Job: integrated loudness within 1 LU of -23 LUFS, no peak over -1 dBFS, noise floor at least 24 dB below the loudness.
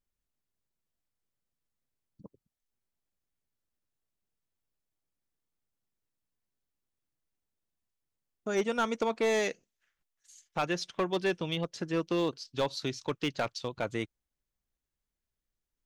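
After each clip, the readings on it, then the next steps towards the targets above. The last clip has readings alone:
clipped 0.3%; flat tops at -22.0 dBFS; loudness -32.5 LUFS; peak -22.0 dBFS; loudness target -23.0 LUFS
-> clip repair -22 dBFS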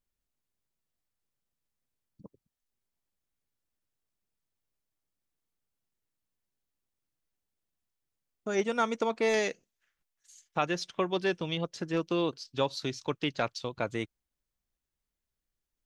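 clipped 0.0%; loudness -31.5 LUFS; peak -13.0 dBFS; loudness target -23.0 LUFS
-> gain +8.5 dB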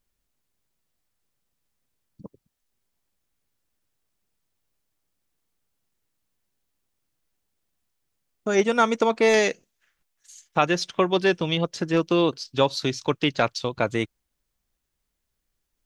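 loudness -23.0 LUFS; peak -4.5 dBFS; noise floor -79 dBFS

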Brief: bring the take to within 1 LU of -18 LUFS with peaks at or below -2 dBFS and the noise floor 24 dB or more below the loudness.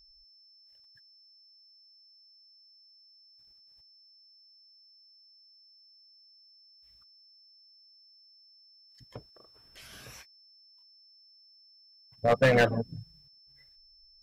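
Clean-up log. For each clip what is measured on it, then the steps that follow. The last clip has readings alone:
clipped 0.3%; flat tops at -17.0 dBFS; steady tone 5300 Hz; tone level -57 dBFS; loudness -26.0 LUFS; peak -17.0 dBFS; loudness target -18.0 LUFS
-> clip repair -17 dBFS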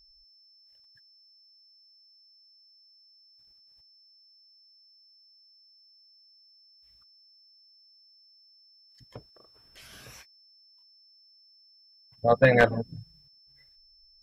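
clipped 0.0%; steady tone 5300 Hz; tone level -57 dBFS
-> notch 5300 Hz, Q 30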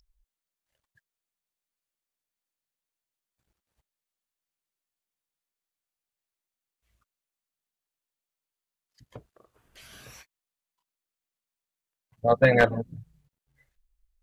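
steady tone none; loudness -22.5 LUFS; peak -8.0 dBFS; loudness target -18.0 LUFS
-> gain +4.5 dB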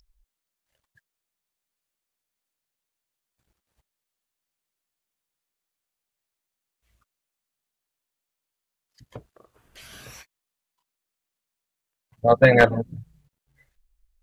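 loudness -18.0 LUFS; peak -3.5 dBFS; noise floor -86 dBFS

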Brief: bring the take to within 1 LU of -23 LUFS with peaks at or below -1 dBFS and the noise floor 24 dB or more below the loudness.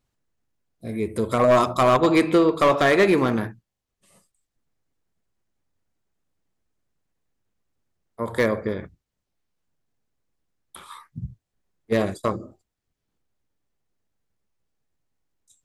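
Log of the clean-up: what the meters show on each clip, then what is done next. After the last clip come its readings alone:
clipped 0.4%; flat tops at -11.0 dBFS; loudness -20.5 LUFS; peak -11.0 dBFS; loudness target -23.0 LUFS
-> clip repair -11 dBFS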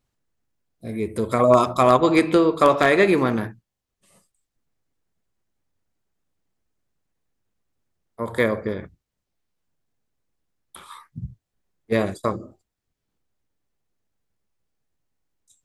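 clipped 0.0%; loudness -19.5 LUFS; peak -2.0 dBFS; loudness target -23.0 LUFS
-> gain -3.5 dB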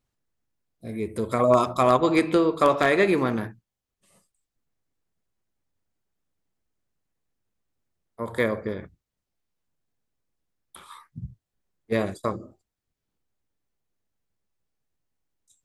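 loudness -23.0 LUFS; peak -5.5 dBFS; noise floor -86 dBFS

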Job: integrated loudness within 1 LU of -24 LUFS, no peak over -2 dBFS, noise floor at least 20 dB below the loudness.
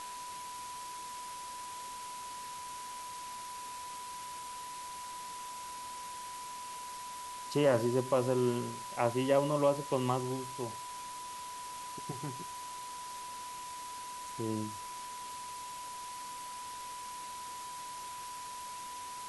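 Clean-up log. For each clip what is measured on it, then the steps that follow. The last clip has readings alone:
steady tone 990 Hz; tone level -42 dBFS; noise floor -44 dBFS; noise floor target -58 dBFS; loudness -37.5 LUFS; peak -15.0 dBFS; loudness target -24.0 LUFS
-> notch 990 Hz, Q 30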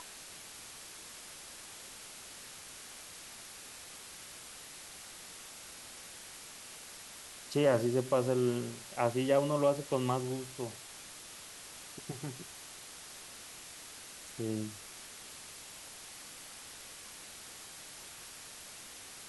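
steady tone none; noise floor -50 dBFS; noise floor target -59 dBFS
-> denoiser 9 dB, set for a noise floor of -50 dBFS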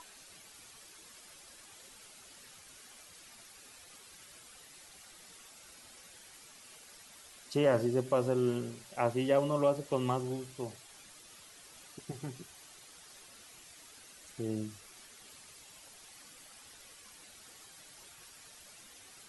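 noise floor -56 dBFS; loudness -33.0 LUFS; peak -15.5 dBFS; loudness target -24.0 LUFS
-> gain +9 dB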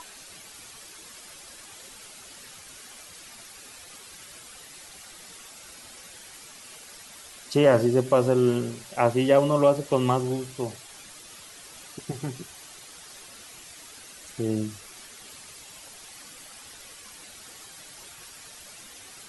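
loudness -24.0 LUFS; peak -6.5 dBFS; noise floor -47 dBFS

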